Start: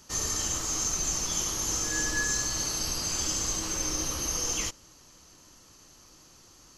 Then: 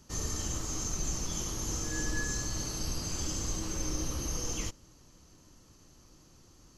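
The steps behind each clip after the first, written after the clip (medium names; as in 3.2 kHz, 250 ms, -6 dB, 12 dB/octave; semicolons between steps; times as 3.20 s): bass shelf 440 Hz +11.5 dB; trim -8 dB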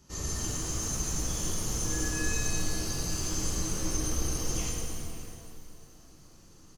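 echo from a far wall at 93 m, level -12 dB; pitch-shifted reverb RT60 2 s, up +7 st, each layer -8 dB, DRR -3 dB; trim -3 dB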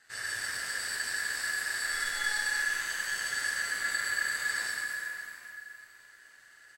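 ring modulator 1.7 kHz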